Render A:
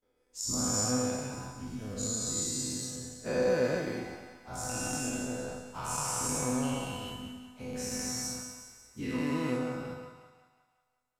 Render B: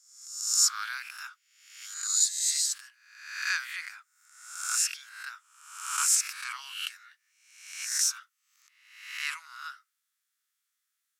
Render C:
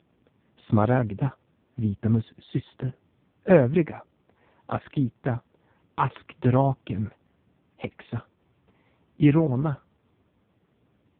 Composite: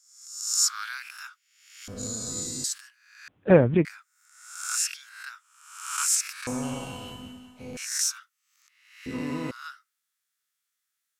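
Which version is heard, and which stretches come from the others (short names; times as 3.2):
B
1.88–2.64 from A
3.28–3.85 from C
6.47–7.77 from A
9.06–9.51 from A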